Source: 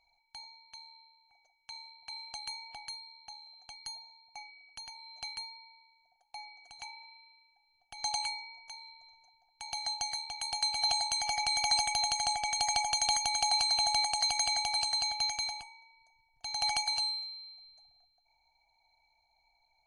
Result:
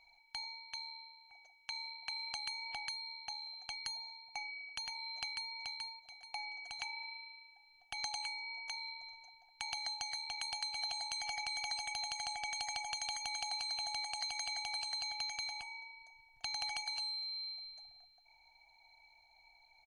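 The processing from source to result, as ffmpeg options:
-filter_complex "[0:a]asplit=2[s0][s1];[s1]afade=t=in:st=5.16:d=0.01,afade=t=out:st=5.56:d=0.01,aecho=0:1:430|860|1290:0.375837|0.0939594|0.0234898[s2];[s0][s2]amix=inputs=2:normalize=0,equalizer=f=2300:t=o:w=1.9:g=8,acompressor=threshold=0.00891:ratio=6,volume=1.26"

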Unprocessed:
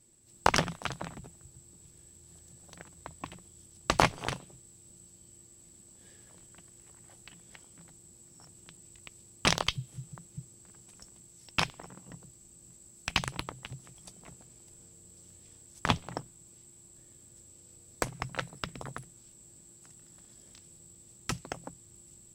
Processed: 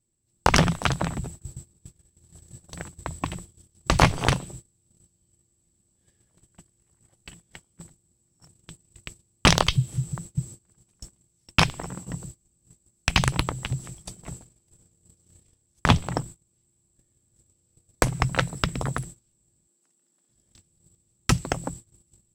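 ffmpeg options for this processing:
-filter_complex "[0:a]asplit=3[s0][s1][s2];[s0]afade=t=out:st=15.51:d=0.02[s3];[s1]tremolo=f=51:d=0.261,afade=t=in:st=15.51:d=0.02,afade=t=out:st=16.53:d=0.02[s4];[s2]afade=t=in:st=16.53:d=0.02[s5];[s3][s4][s5]amix=inputs=3:normalize=0,asettb=1/sr,asplit=3[s6][s7][s8];[s6]atrim=end=19.674[s9];[s7]atrim=start=19.67:end=20.29,asetpts=PTS-STARTPTS,afade=t=in:d=0.004:c=qsin,afade=t=out:st=0.616:d=0.004:c=qsin,highpass=f=230:w=0.5412,highpass=f=230:w=1.3066[s10];[s8]atrim=start=20.286[s11];[s9][s10]acrossfade=d=0.004:c1=hsin:c2=qsin[s12];[s12][s11]acrossfade=d=0.004:c1=qsin:c2=hsin,lowshelf=f=160:g=9,agate=range=0.0562:threshold=0.00355:ratio=16:detection=peak,alimiter=level_in=3.76:limit=0.891:release=50:level=0:latency=1,volume=0.891"

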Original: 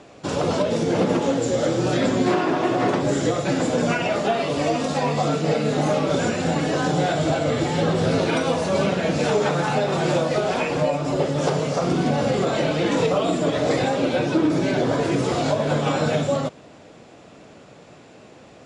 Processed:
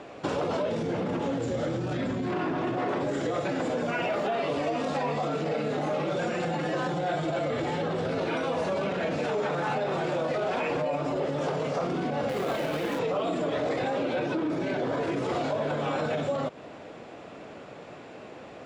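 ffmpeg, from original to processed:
-filter_complex "[0:a]asplit=3[s0][s1][s2];[s0]afade=t=out:st=0.71:d=0.02[s3];[s1]asubboost=boost=5:cutoff=240,afade=t=in:st=0.71:d=0.02,afade=t=out:st=2.76:d=0.02[s4];[s2]afade=t=in:st=2.76:d=0.02[s5];[s3][s4][s5]amix=inputs=3:normalize=0,asettb=1/sr,asplit=3[s6][s7][s8];[s6]atrim=end=3.854[s9];[s7]atrim=start=3.85:end=4.34,asetpts=PTS-STARTPTS,afade=t=in:d=0.004:c=qsin,afade=t=out:st=0.486:d=0.004:c=qsin,acrusher=bits=7:mix=0:aa=0.5[s10];[s8]atrim=start=4.336[s11];[s9][s10]acrossfade=d=0.004:c1=hsin:c2=qsin[s12];[s12][s11]acrossfade=d=0.004:c1=qsin:c2=hsin,asettb=1/sr,asplit=3[s13][s14][s15];[s13]atrim=end=5.994[s16];[s14]atrim=start=5.99:end=7.5,asetpts=PTS-STARTPTS,afade=t=in:d=0.004:c=qsin,afade=t=out:st=1.506:d=0.004:c=qsin,aecho=1:1:5.7:0.65,atrim=end_sample=66591[s17];[s15]atrim=start=7.496[s18];[s16][s17]acrossfade=d=0.004:c1=hsin:c2=qsin[s19];[s19][s18]acrossfade=d=0.004:c1=qsin:c2=hsin,asettb=1/sr,asplit=3[s20][s21][s22];[s20]atrim=end=12.294[s23];[s21]atrim=start=12.29:end=12.99,asetpts=PTS-STARTPTS,afade=t=in:d=0.004:c=qsin,afade=t=out:st=0.696:d=0.004:c=qsin,acrusher=bits=2:mode=log:mix=0:aa=0.000001[s24];[s22]atrim=start=12.986[s25];[s23][s24]acrossfade=d=0.004:c1=hsin:c2=qsin[s26];[s26][s25]acrossfade=d=0.004:c1=qsin:c2=hsin,alimiter=limit=0.158:level=0:latency=1:release=19,acompressor=threshold=0.0398:ratio=6,bass=f=250:g=-6,treble=f=4000:g=-11,volume=1.5"

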